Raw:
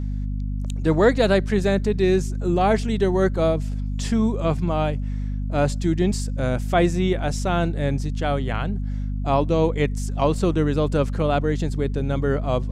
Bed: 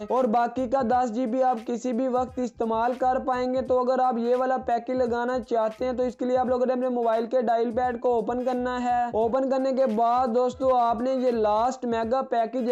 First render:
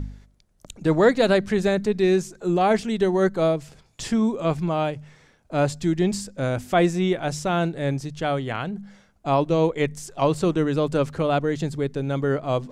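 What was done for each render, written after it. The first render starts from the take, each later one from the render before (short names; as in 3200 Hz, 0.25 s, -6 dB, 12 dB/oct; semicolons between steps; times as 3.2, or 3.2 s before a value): de-hum 50 Hz, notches 5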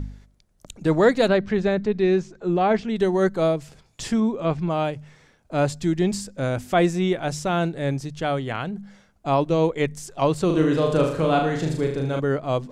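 1.28–2.96 air absorption 150 m; 4.2–4.7 air absorption 100 m; 10.46–12.2 flutter echo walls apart 6.5 m, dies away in 0.6 s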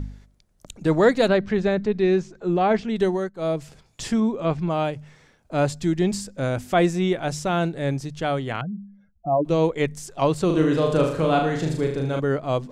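3.08–3.57 dip -20.5 dB, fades 0.24 s; 8.61–9.45 spectral contrast raised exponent 2.6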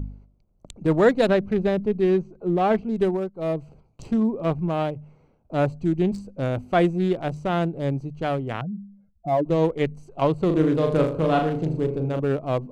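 Wiener smoothing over 25 samples; dynamic EQ 5300 Hz, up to -3 dB, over -43 dBFS, Q 0.76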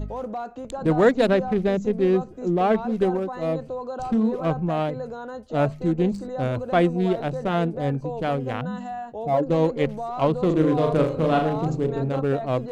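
add bed -9 dB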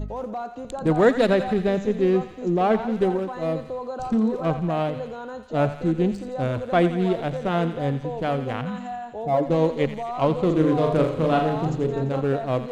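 thinning echo 86 ms, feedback 76%, high-pass 960 Hz, level -10 dB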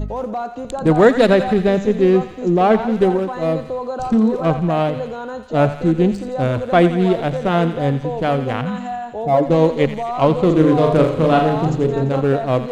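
gain +6.5 dB; limiter -1 dBFS, peak gain reduction 2.5 dB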